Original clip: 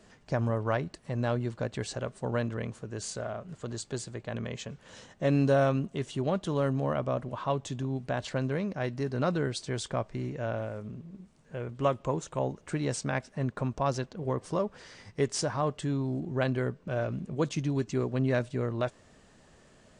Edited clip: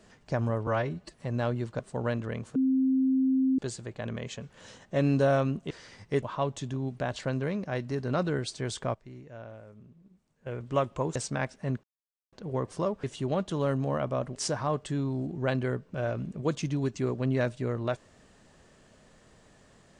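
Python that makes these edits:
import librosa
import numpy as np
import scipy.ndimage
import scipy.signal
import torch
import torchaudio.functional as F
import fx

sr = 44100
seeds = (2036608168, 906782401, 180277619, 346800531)

y = fx.edit(x, sr, fx.stretch_span(start_s=0.67, length_s=0.31, factor=1.5),
    fx.cut(start_s=1.64, length_s=0.44),
    fx.bleep(start_s=2.84, length_s=1.03, hz=263.0, db=-21.5),
    fx.swap(start_s=5.99, length_s=1.32, other_s=14.77, other_length_s=0.52),
    fx.clip_gain(start_s=10.03, length_s=1.52, db=-11.5),
    fx.cut(start_s=12.24, length_s=0.65),
    fx.silence(start_s=13.57, length_s=0.49), tone=tone)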